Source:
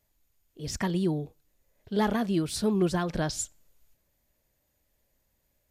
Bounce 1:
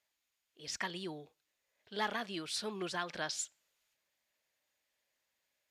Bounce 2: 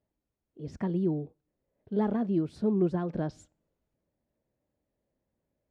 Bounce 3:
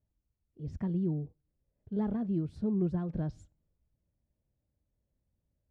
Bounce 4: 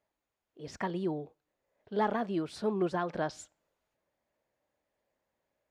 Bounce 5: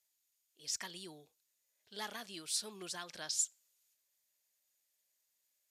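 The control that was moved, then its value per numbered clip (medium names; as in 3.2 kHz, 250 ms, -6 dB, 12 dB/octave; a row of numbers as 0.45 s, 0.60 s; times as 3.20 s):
band-pass filter, frequency: 2.7 kHz, 280 Hz, 100 Hz, 800 Hz, 7.2 kHz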